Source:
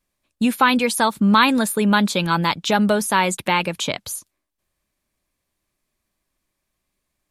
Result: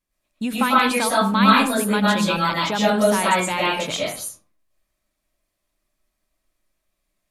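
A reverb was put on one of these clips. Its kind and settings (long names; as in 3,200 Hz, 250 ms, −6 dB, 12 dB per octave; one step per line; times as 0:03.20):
comb and all-pass reverb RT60 0.42 s, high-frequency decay 0.55×, pre-delay 80 ms, DRR −6.5 dB
level −7 dB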